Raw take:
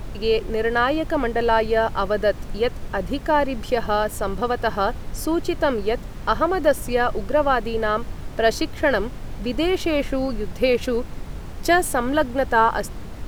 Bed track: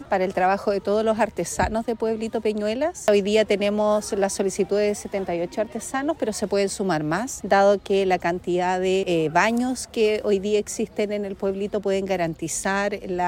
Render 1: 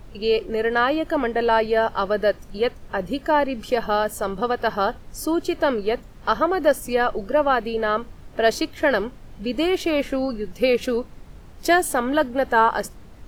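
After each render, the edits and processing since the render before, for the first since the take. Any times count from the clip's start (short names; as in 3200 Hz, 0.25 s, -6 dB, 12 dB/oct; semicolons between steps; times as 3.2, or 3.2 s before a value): noise print and reduce 10 dB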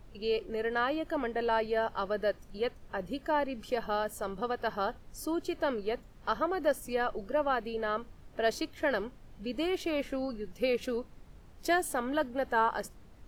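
gain -10.5 dB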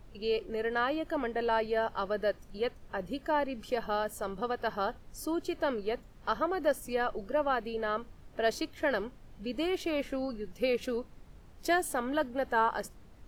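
nothing audible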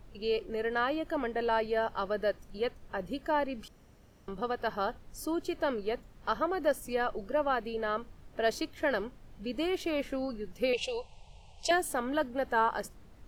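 3.68–4.28 room tone; 10.73–11.71 EQ curve 120 Hz 0 dB, 190 Hz -6 dB, 270 Hz -27 dB, 410 Hz -4 dB, 890 Hz +10 dB, 1500 Hz -27 dB, 2700 Hz +13 dB, 3800 Hz +8 dB, 8300 Hz +6 dB, 14000 Hz -22 dB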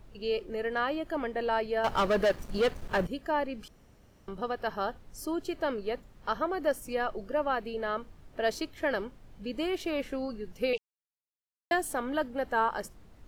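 1.84–3.07 sample leveller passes 3; 10.78–11.71 mute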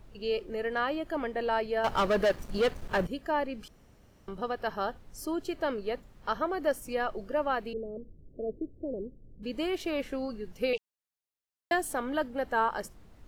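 7.73–9.43 steep low-pass 510 Hz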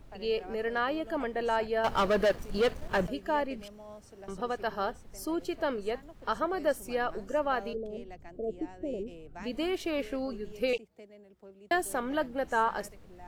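add bed track -27.5 dB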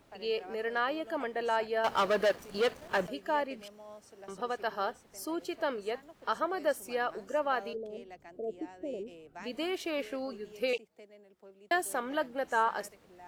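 HPF 390 Hz 6 dB/oct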